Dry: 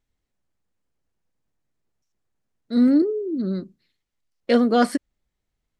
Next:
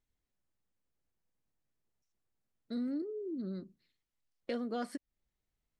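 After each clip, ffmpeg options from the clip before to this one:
ffmpeg -i in.wav -af "acompressor=threshold=-31dB:ratio=3,volume=-7.5dB" out.wav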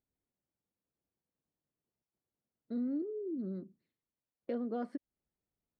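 ffmpeg -i in.wav -af "bandpass=frequency=310:width_type=q:width=0.51:csg=0,volume=1dB" out.wav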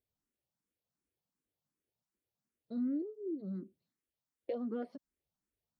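ffmpeg -i in.wav -filter_complex "[0:a]asplit=2[link_01][link_02];[link_02]afreqshift=2.7[link_03];[link_01][link_03]amix=inputs=2:normalize=1,volume=1.5dB" out.wav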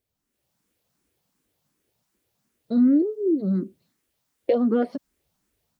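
ffmpeg -i in.wav -af "dynaudnorm=framelen=250:gausssize=3:maxgain=9dB,volume=8dB" out.wav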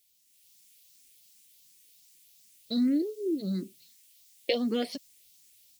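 ffmpeg -i in.wav -af "aexciter=amount=12.6:drive=4.8:freq=2100,volume=-8dB" out.wav

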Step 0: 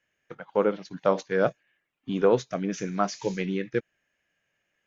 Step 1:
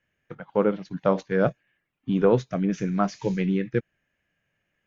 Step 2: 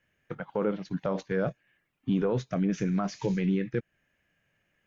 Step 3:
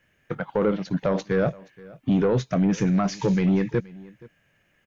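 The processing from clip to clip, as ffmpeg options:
ffmpeg -i in.wav -af "bass=frequency=250:gain=9,treble=frequency=4000:gain=-7" out.wav
ffmpeg -i in.wav -filter_complex "[0:a]asplit=2[link_01][link_02];[link_02]acompressor=threshold=-30dB:ratio=6,volume=1.5dB[link_03];[link_01][link_03]amix=inputs=2:normalize=0,alimiter=limit=-13.5dB:level=0:latency=1:release=23,volume=-4.5dB" out.wav
ffmpeg -i in.wav -af "asoftclip=type=tanh:threshold=-21.5dB,aecho=1:1:474:0.0794,volume=8dB" out.wav

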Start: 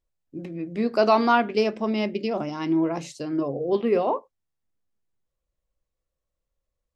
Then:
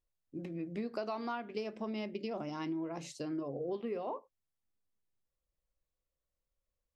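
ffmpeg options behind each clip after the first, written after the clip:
ffmpeg -i in.wav -af "acompressor=threshold=-28dB:ratio=10,volume=-6.5dB" out.wav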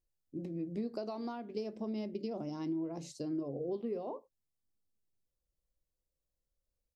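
ffmpeg -i in.wav -af "firequalizer=gain_entry='entry(320,0);entry(1300,-12);entry(2600,-12);entry(4400,-3)':delay=0.05:min_phase=1,volume=1.5dB" out.wav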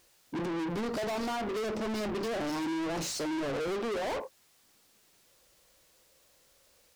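ffmpeg -i in.wav -filter_complex "[0:a]asplit=2[link_01][link_02];[link_02]highpass=frequency=720:poles=1,volume=40dB,asoftclip=type=tanh:threshold=-25dB[link_03];[link_01][link_03]amix=inputs=2:normalize=0,lowpass=frequency=6800:poles=1,volume=-6dB,volume=-2dB" out.wav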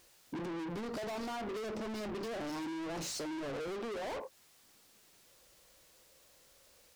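ffmpeg -i in.wav -af "acompressor=threshold=-40dB:ratio=6,volume=1dB" out.wav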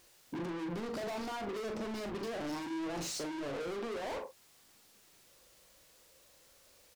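ffmpeg -i in.wav -filter_complex "[0:a]asplit=2[link_01][link_02];[link_02]adelay=40,volume=-8dB[link_03];[link_01][link_03]amix=inputs=2:normalize=0" out.wav

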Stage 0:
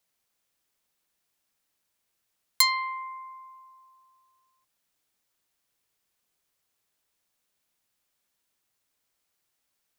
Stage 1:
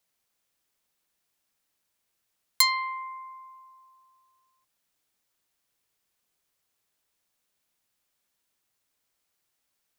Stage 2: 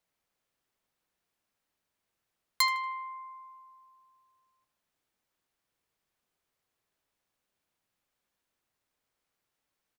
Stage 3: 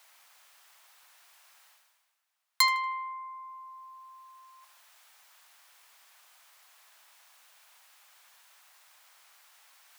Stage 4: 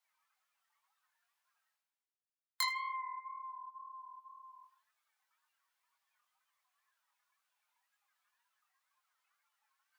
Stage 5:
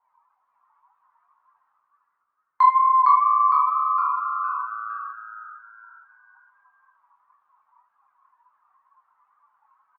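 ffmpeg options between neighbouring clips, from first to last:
ffmpeg -i in.wav -af anull out.wav
ffmpeg -i in.wav -filter_complex "[0:a]highshelf=frequency=3200:gain=-9.5,asplit=2[link_01][link_02];[link_02]adelay=78,lowpass=frequency=3700:poles=1,volume=-11.5dB,asplit=2[link_03][link_04];[link_04]adelay=78,lowpass=frequency=3700:poles=1,volume=0.52,asplit=2[link_05][link_06];[link_06]adelay=78,lowpass=frequency=3700:poles=1,volume=0.52,asplit=2[link_07][link_08];[link_08]adelay=78,lowpass=frequency=3700:poles=1,volume=0.52,asplit=2[link_09][link_10];[link_10]adelay=78,lowpass=frequency=3700:poles=1,volume=0.52,asplit=2[link_11][link_12];[link_12]adelay=78,lowpass=frequency=3700:poles=1,volume=0.52[link_13];[link_01][link_03][link_05][link_07][link_09][link_11][link_13]amix=inputs=7:normalize=0" out.wav
ffmpeg -i in.wav -af "highpass=frequency=760:width=0.5412,highpass=frequency=760:width=1.3066,areverse,acompressor=mode=upward:threshold=-44dB:ratio=2.5,areverse,volume=3dB" out.wav
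ffmpeg -i in.wav -af "acompressor=threshold=-45dB:ratio=1.5,afftdn=noise_reduction=24:noise_floor=-54,flanger=delay=18:depth=6.4:speed=2,volume=1.5dB" out.wav
ffmpeg -i in.wav -filter_complex "[0:a]lowpass=frequency=990:width_type=q:width=9.4,asplit=6[link_01][link_02][link_03][link_04][link_05][link_06];[link_02]adelay=459,afreqshift=110,volume=-3dB[link_07];[link_03]adelay=918,afreqshift=220,volume=-10.7dB[link_08];[link_04]adelay=1377,afreqshift=330,volume=-18.5dB[link_09];[link_05]adelay=1836,afreqshift=440,volume=-26.2dB[link_10];[link_06]adelay=2295,afreqshift=550,volume=-34dB[link_11];[link_01][link_07][link_08][link_09][link_10][link_11]amix=inputs=6:normalize=0,volume=8dB" out.wav

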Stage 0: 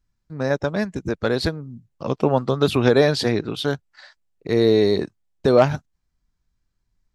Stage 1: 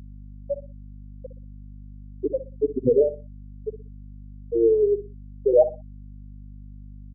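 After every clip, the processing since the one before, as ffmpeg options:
ffmpeg -i in.wav -filter_complex "[0:a]afftfilt=real='re*gte(hypot(re,im),1.12)':imag='im*gte(hypot(re,im),1.12)':win_size=1024:overlap=0.75,asplit=2[link_01][link_02];[link_02]adelay=61,lowpass=frequency=4900:poles=1,volume=-13dB,asplit=2[link_03][link_04];[link_04]adelay=61,lowpass=frequency=4900:poles=1,volume=0.26,asplit=2[link_05][link_06];[link_06]adelay=61,lowpass=frequency=4900:poles=1,volume=0.26[link_07];[link_01][link_03][link_05][link_07]amix=inputs=4:normalize=0,aeval=exprs='val(0)+0.01*(sin(2*PI*50*n/s)+sin(2*PI*2*50*n/s)/2+sin(2*PI*3*50*n/s)/3+sin(2*PI*4*50*n/s)/4+sin(2*PI*5*50*n/s)/5)':channel_layout=same" out.wav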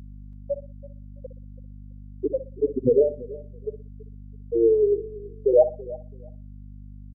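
ffmpeg -i in.wav -af "aecho=1:1:331|662:0.112|0.0213" out.wav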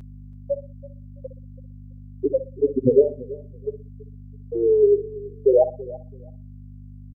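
ffmpeg -i in.wav -af "aecho=1:1:7.5:0.51,volume=1.5dB" out.wav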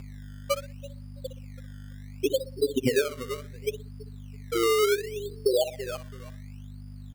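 ffmpeg -i in.wav -af "aemphasis=mode=production:type=75fm,acompressor=threshold=-21dB:ratio=5,acrusher=samples=18:mix=1:aa=0.000001:lfo=1:lforange=18:lforate=0.69" out.wav

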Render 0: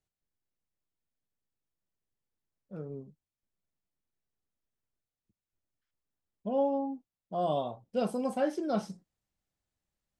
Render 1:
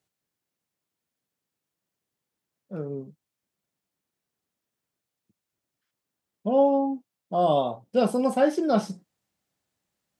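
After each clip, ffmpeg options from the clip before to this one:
ffmpeg -i in.wav -af "highpass=130,volume=8.5dB" out.wav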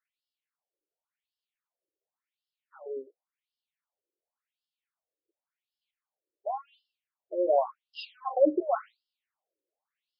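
ffmpeg -i in.wav -af "afftfilt=real='re*between(b*sr/1024,410*pow(3900/410,0.5+0.5*sin(2*PI*0.91*pts/sr))/1.41,410*pow(3900/410,0.5+0.5*sin(2*PI*0.91*pts/sr))*1.41)':imag='im*between(b*sr/1024,410*pow(3900/410,0.5+0.5*sin(2*PI*0.91*pts/sr))/1.41,410*pow(3900/410,0.5+0.5*sin(2*PI*0.91*pts/sr))*1.41)':win_size=1024:overlap=0.75" out.wav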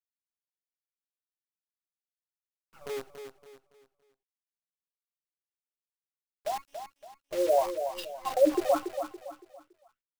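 ffmpeg -i in.wav -filter_complex "[0:a]acrusher=bits=7:dc=4:mix=0:aa=0.000001,asplit=2[link_01][link_02];[link_02]aecho=0:1:282|564|846|1128:0.376|0.135|0.0487|0.0175[link_03];[link_01][link_03]amix=inputs=2:normalize=0" out.wav

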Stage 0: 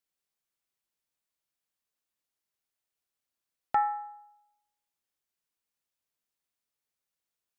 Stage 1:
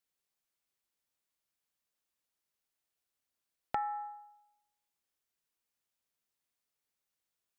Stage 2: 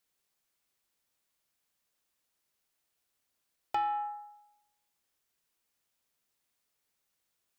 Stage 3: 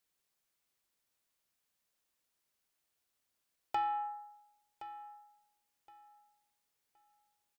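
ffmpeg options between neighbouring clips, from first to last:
ffmpeg -i in.wav -af "acompressor=threshold=-32dB:ratio=5" out.wav
ffmpeg -i in.wav -af "asoftclip=type=tanh:threshold=-31dB,volume=6.5dB" out.wav
ffmpeg -i in.wav -af "aecho=1:1:1069|2138|3207:0.2|0.0479|0.0115,volume=-2.5dB" out.wav

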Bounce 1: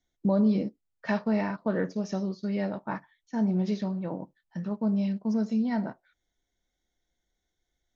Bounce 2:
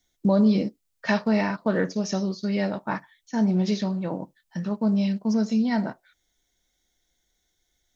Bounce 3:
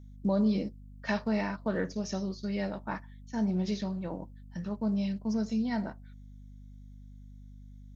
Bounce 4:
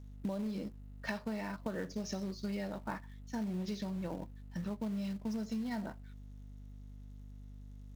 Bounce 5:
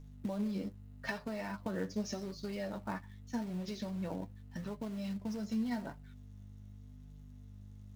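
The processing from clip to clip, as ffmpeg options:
ffmpeg -i in.wav -af "highshelf=frequency=2700:gain=10,volume=4dB" out.wav
ffmpeg -i in.wav -af "aeval=exprs='val(0)+0.01*(sin(2*PI*50*n/s)+sin(2*PI*2*50*n/s)/2+sin(2*PI*3*50*n/s)/3+sin(2*PI*4*50*n/s)/4+sin(2*PI*5*50*n/s)/5)':channel_layout=same,volume=-7.5dB" out.wav
ffmpeg -i in.wav -filter_complex "[0:a]asplit=2[link_01][link_02];[link_02]acrusher=bits=2:mode=log:mix=0:aa=0.000001,volume=-7.5dB[link_03];[link_01][link_03]amix=inputs=2:normalize=0,acompressor=threshold=-30dB:ratio=10,volume=-4dB" out.wav
ffmpeg -i in.wav -af "flanger=delay=6.7:depth=4.2:regen=31:speed=0.84:shape=triangular,volume=4dB" out.wav

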